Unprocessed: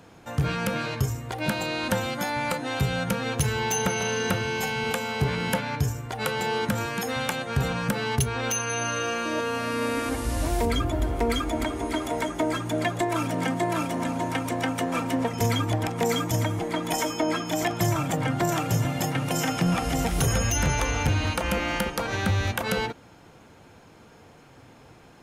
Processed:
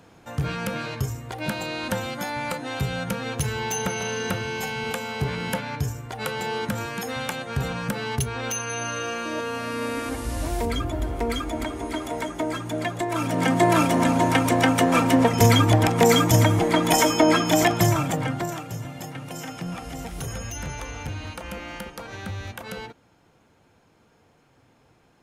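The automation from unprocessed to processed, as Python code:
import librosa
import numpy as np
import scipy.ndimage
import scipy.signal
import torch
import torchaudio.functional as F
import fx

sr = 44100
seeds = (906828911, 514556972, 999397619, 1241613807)

y = fx.gain(x, sr, db=fx.line((13.04, -1.5), (13.65, 8.0), (17.56, 8.0), (18.32, -1.0), (18.66, -9.0)))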